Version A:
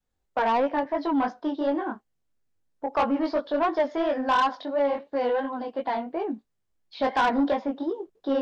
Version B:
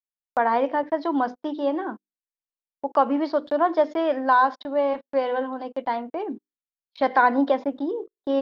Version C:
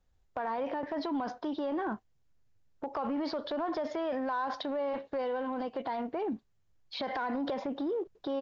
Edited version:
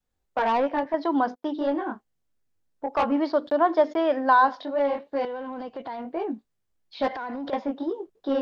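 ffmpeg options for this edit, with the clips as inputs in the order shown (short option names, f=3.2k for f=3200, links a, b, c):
-filter_complex "[1:a]asplit=2[a][b];[2:a]asplit=2[c][d];[0:a]asplit=5[e][f][g][h][i];[e]atrim=end=0.942[j];[a]atrim=start=0.938:end=1.592[k];[f]atrim=start=1.588:end=3.122[l];[b]atrim=start=3.118:end=4.482[m];[g]atrim=start=4.478:end=5.252[n];[c]atrim=start=5.248:end=6.052[o];[h]atrim=start=6.048:end=7.082[p];[d]atrim=start=7.078:end=7.532[q];[i]atrim=start=7.528[r];[j][k]acrossfade=d=0.004:c1=hsin:c2=hsin[s];[s][l]acrossfade=d=0.004:c1=hsin:c2=hsin[t];[t][m]acrossfade=d=0.004:c1=hsin:c2=hsin[u];[u][n]acrossfade=d=0.004:c1=hsin:c2=hsin[v];[v][o]acrossfade=d=0.004:c1=hsin:c2=hsin[w];[w][p]acrossfade=d=0.004:c1=hsin:c2=hsin[x];[x][q]acrossfade=d=0.004:c1=hsin:c2=hsin[y];[y][r]acrossfade=d=0.004:c1=hsin:c2=hsin"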